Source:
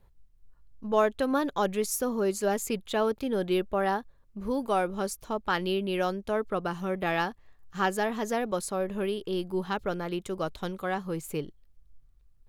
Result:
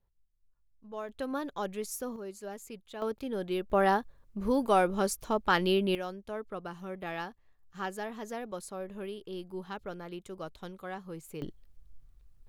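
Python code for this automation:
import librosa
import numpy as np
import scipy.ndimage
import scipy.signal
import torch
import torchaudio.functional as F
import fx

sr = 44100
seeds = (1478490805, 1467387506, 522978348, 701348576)

y = fx.gain(x, sr, db=fx.steps((0.0, -16.0), (1.09, -8.0), (2.16, -14.5), (3.02, -6.0), (3.7, 2.0), (5.95, -9.5), (11.42, 3.0)))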